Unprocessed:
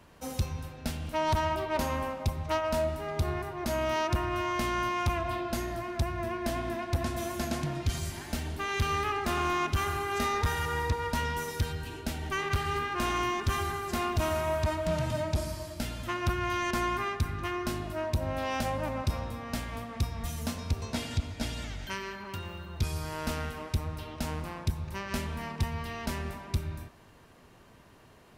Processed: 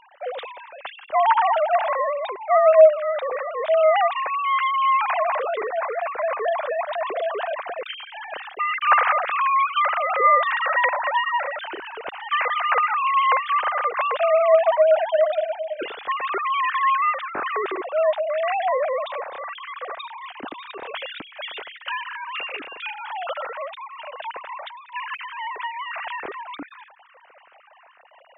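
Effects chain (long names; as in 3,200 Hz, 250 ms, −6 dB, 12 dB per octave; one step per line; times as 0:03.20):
three sine waves on the formant tracks
level +9 dB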